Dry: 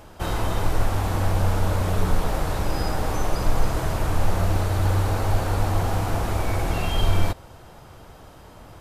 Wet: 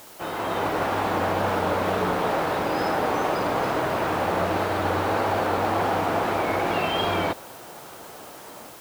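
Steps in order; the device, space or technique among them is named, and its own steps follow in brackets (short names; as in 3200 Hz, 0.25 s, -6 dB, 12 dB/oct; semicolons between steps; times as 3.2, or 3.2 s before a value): dictaphone (BPF 270–3200 Hz; AGC gain up to 7.5 dB; wow and flutter; white noise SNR 22 dB); gain -1.5 dB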